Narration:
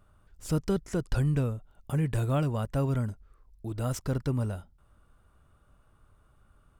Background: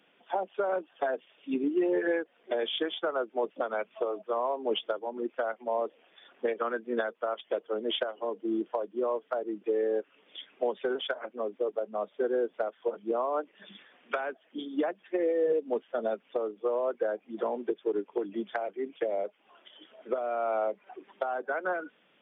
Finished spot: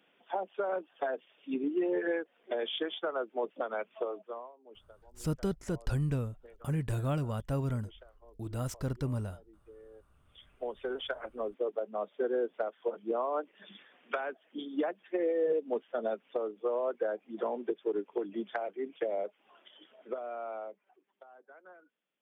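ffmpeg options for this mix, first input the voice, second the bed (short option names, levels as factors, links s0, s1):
-filter_complex "[0:a]adelay=4750,volume=0.596[s0];[1:a]volume=9.44,afade=t=out:st=4.03:d=0.49:silence=0.0794328,afade=t=in:st=10.1:d=1.17:silence=0.0707946,afade=t=out:st=19.53:d=1.48:silence=0.0891251[s1];[s0][s1]amix=inputs=2:normalize=0"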